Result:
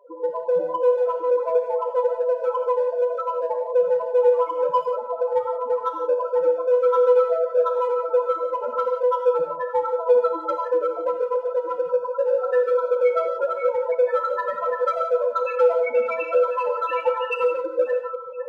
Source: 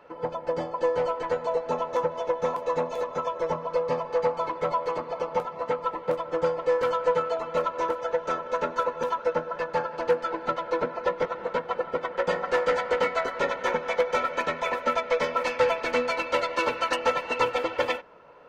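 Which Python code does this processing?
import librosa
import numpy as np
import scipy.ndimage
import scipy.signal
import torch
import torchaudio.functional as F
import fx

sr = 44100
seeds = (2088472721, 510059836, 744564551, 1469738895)

p1 = fx.reverse_delay(x, sr, ms=534, wet_db=-6)
p2 = fx.dereverb_blind(p1, sr, rt60_s=0.51)
p3 = fx.spec_topn(p2, sr, count=4)
p4 = np.clip(p3, -10.0 ** (-28.0 / 20.0), 10.0 ** (-28.0 / 20.0))
p5 = p3 + (p4 * librosa.db_to_amplitude(-10.5))
p6 = fx.low_shelf(p5, sr, hz=85.0, db=-12.0)
p7 = fx.rev_gated(p6, sr, seeds[0], gate_ms=200, shape='flat', drr_db=3.0)
y = p7 * librosa.db_to_amplitude(3.5)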